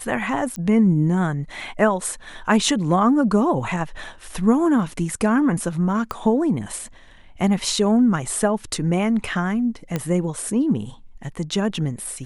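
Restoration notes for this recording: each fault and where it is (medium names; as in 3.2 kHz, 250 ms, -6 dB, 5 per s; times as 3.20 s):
0.56 s: pop -16 dBFS
6.11 s: pop -13 dBFS
9.96 s: pop -10 dBFS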